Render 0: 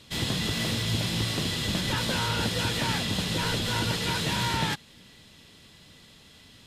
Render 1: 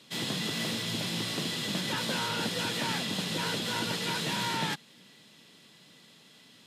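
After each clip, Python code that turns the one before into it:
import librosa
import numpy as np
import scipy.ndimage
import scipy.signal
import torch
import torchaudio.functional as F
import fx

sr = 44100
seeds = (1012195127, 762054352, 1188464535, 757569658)

y = scipy.signal.sosfilt(scipy.signal.butter(4, 150.0, 'highpass', fs=sr, output='sos'), x)
y = y * 10.0 ** (-3.0 / 20.0)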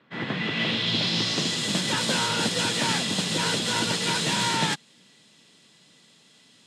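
y = fx.filter_sweep_lowpass(x, sr, from_hz=1600.0, to_hz=8300.0, start_s=0.11, end_s=1.65, q=1.8)
y = fx.upward_expand(y, sr, threshold_db=-45.0, expansion=1.5)
y = y * 10.0 ** (7.0 / 20.0)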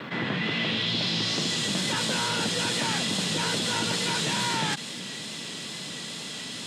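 y = fx.vibrato(x, sr, rate_hz=2.3, depth_cents=33.0)
y = fx.env_flatten(y, sr, amount_pct=70)
y = y * 10.0 ** (-4.5 / 20.0)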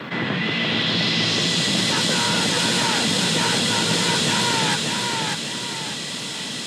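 y = fx.dmg_crackle(x, sr, seeds[0], per_s=68.0, level_db=-54.0)
y = fx.echo_feedback(y, sr, ms=593, feedback_pct=40, wet_db=-3.0)
y = y * 10.0 ** (5.0 / 20.0)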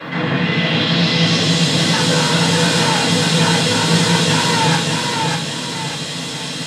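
y = fx.room_shoebox(x, sr, seeds[1], volume_m3=220.0, walls='furnished', distance_m=5.4)
y = y * 10.0 ** (-5.5 / 20.0)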